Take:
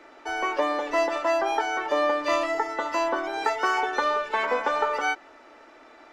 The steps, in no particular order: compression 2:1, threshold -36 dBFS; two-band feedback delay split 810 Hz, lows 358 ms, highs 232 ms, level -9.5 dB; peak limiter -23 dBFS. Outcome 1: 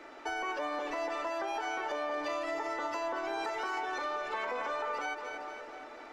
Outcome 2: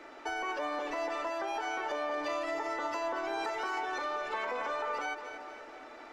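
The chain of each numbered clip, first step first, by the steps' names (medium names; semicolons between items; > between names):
peak limiter > two-band feedback delay > compression; peak limiter > compression > two-band feedback delay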